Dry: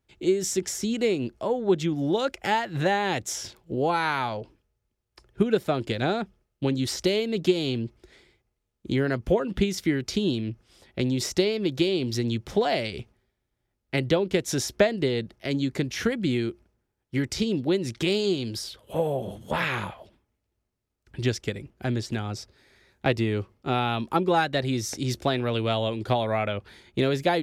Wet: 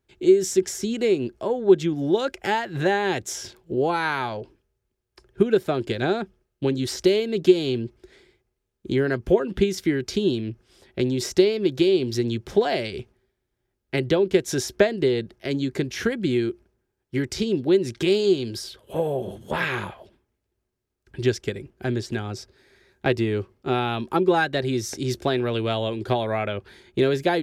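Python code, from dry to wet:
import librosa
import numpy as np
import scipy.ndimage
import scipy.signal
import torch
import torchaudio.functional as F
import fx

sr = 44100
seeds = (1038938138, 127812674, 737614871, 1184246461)

y = fx.small_body(x, sr, hz=(380.0, 1600.0), ring_ms=45, db=8)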